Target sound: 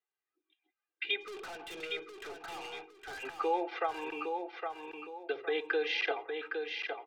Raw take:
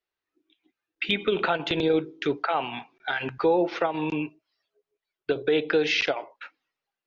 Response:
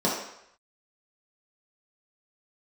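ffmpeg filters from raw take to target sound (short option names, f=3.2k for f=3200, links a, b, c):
-filter_complex "[0:a]highpass=560,lowpass=3.2k,aecho=1:1:2.5:0.98,aphaser=in_gain=1:out_gain=1:delay=2.9:decay=0.21:speed=0.33:type=triangular,asplit=3[a][b][c];[a]afade=t=out:st=1.2:d=0.02[d];[b]aeval=exprs='(tanh(50.1*val(0)+0.1)-tanh(0.1))/50.1':c=same,afade=t=in:st=1.2:d=0.02,afade=t=out:st=3.22:d=0.02[e];[c]afade=t=in:st=3.22:d=0.02[f];[d][e][f]amix=inputs=3:normalize=0,aecho=1:1:812|1624|2436|3248:0.531|0.175|0.0578|0.0191,volume=-8.5dB"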